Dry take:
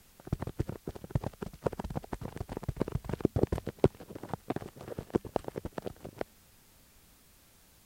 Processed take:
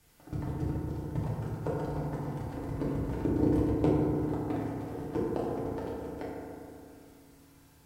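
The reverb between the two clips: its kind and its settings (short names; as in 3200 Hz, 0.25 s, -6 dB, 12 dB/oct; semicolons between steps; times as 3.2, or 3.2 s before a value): FDN reverb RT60 2.6 s, low-frequency decay 1.2×, high-frequency decay 0.3×, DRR -8 dB; gain -8 dB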